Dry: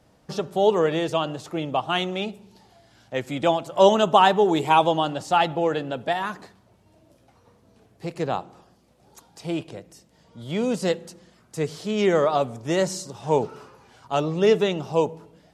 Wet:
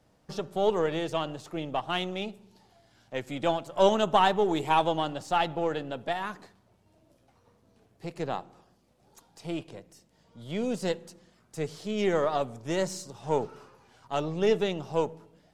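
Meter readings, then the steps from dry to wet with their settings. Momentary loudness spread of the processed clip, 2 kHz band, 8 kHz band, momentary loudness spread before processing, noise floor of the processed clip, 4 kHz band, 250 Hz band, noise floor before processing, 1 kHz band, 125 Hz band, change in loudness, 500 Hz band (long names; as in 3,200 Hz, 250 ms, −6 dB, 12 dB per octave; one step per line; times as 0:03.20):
14 LU, −6.0 dB, −6.0 dB, 14 LU, −66 dBFS, −6.0 dB, −6.0 dB, −60 dBFS, −6.5 dB, −6.0 dB, −6.0 dB, −6.5 dB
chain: gain on one half-wave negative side −3 dB
level −5 dB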